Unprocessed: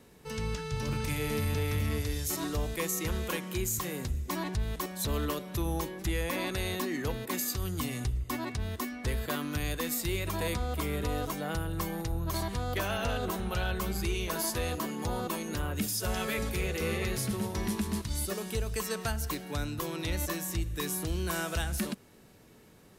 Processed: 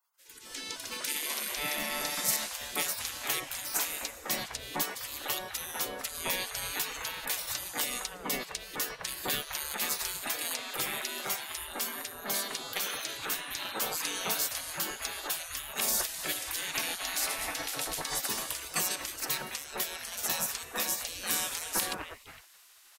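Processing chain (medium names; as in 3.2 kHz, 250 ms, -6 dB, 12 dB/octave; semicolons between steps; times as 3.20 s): three bands offset in time highs, lows, mids 190/460 ms, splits 350/2000 Hz; spectral gate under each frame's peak -20 dB weak; trim +9 dB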